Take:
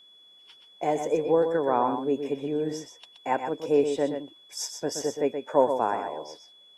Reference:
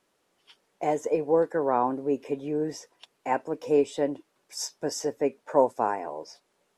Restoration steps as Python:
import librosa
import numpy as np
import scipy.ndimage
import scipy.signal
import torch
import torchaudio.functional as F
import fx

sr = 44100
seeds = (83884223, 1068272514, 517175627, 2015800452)

y = fx.notch(x, sr, hz=3400.0, q=30.0)
y = fx.fix_echo_inverse(y, sr, delay_ms=124, level_db=-7.5)